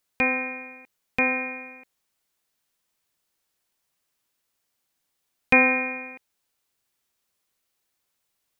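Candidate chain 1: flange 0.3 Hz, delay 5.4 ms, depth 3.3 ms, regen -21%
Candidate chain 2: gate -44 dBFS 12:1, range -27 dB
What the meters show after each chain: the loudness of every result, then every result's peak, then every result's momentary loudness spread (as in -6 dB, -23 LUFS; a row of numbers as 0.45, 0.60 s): -26.0, -22.5 LUFS; -7.5, -3.5 dBFS; 21, 19 LU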